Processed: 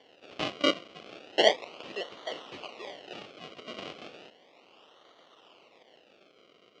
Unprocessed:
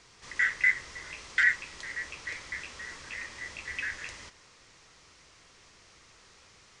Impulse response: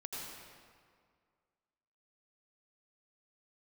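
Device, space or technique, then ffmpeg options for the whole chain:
circuit-bent sampling toy: -af "acrusher=samples=34:mix=1:aa=0.000001:lfo=1:lforange=34:lforate=0.34,highpass=460,equalizer=frequency=900:width_type=q:width=4:gain=-5,equalizer=frequency=1600:width_type=q:width=4:gain=-8,equalizer=frequency=2900:width_type=q:width=4:gain=9,lowpass=frequency=5100:width=0.5412,lowpass=frequency=5100:width=1.3066,volume=3.5dB"

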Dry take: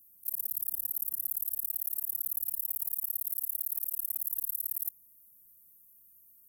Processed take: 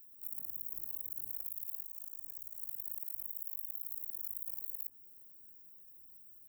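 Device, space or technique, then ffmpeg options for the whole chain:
chipmunk voice: -filter_complex "[0:a]asettb=1/sr,asplit=3[link_01][link_02][link_03];[link_01]atrim=end=1.854[link_04];[link_02]atrim=start=1.85:end=2.61,asetpts=PTS-STARTPTS,afade=type=in:duration=0.004:curve=qsin,afade=type=out:start_time=0.756:duration=0.004:curve=qsin,equalizer=frequency=125:width_type=o:width=1:gain=-11,equalizer=frequency=500:width_type=o:width=1:gain=7,equalizer=frequency=1000:width_type=o:width=1:gain=-3,equalizer=frequency=2000:width_type=o:width=1:gain=-11,equalizer=frequency=4000:width_type=o:width=1:gain=12,equalizer=frequency=8000:width_type=o:width=1:gain=-9,equalizer=frequency=16000:width_type=o:width=1:gain=-5[link_05];[link_03]atrim=start=2.606[link_06];[link_04][link_05]acrossfade=duration=0.004:curve1=hsin:curve2=qsin[link_07];[link_07][link_06]acrossfade=duration=0.004:curve1=qsin:curve2=hsin,acrossover=split=9400[link_08][link_09];[link_09]acompressor=threshold=-46dB:ratio=4:attack=1:release=60[link_10];[link_08][link_10]amix=inputs=2:normalize=0,asetrate=64194,aresample=44100,atempo=0.686977,equalizer=frequency=3900:width=1.6:gain=-5.5,volume=6dB"

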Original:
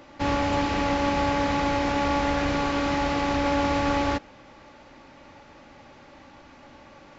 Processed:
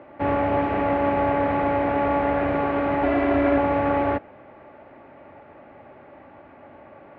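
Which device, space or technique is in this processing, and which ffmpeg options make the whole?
bass cabinet: -filter_complex "[0:a]asettb=1/sr,asplit=3[link_01][link_02][link_03];[link_01]atrim=end=3.034[link_04];[link_02]atrim=start=3.03:end=3.58,asetpts=PTS-STARTPTS,afade=type=in:duration=0.004:curve=qsin,afade=type=out:start_time=0.546:duration=0.004:curve=qsin,aecho=1:1:3:0.95,atrim=end_sample=24255[link_05];[link_03]atrim=start=3.576[link_06];[link_04][link_05]acrossfade=duration=0.004:curve1=hsin:curve2=qsin[link_07];[link_07][link_06]acrossfade=duration=0.004:curve1=qsin:curve2=hsin,highpass=72,equalizer=frequency=98:width_type=q:width=4:gain=3,equalizer=frequency=400:width_type=q:width=4:gain=7,equalizer=frequency=660:width_type=q:width=4:gain=10,lowpass=frequency=2300:width=0.5412,lowpass=frequency=2300:width=1.3066"

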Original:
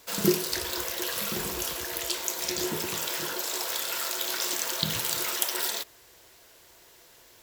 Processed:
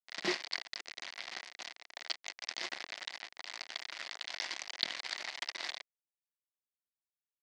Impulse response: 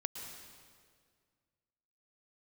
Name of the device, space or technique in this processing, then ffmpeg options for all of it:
hand-held game console: -af "acrusher=bits=3:mix=0:aa=0.000001,highpass=430,equalizer=frequency=440:width_type=q:width=4:gain=-10,equalizer=frequency=710:width_type=q:width=4:gain=3,equalizer=frequency=1300:width_type=q:width=4:gain=-3,equalizer=frequency=2000:width_type=q:width=4:gain=9,equalizer=frequency=4600:width_type=q:width=4:gain=4,lowpass=frequency=5000:width=0.5412,lowpass=frequency=5000:width=1.3066,volume=-5.5dB"

